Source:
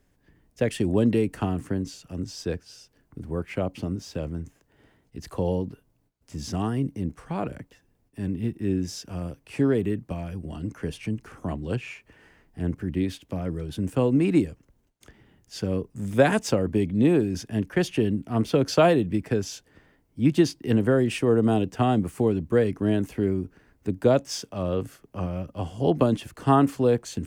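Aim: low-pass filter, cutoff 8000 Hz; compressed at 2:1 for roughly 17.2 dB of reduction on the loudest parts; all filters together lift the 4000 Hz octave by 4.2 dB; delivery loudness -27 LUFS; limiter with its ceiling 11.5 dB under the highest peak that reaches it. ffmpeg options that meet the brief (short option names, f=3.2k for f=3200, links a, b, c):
-af "lowpass=8k,equalizer=f=4k:t=o:g=6,acompressor=threshold=-47dB:ratio=2,volume=18dB,alimiter=limit=-16dB:level=0:latency=1"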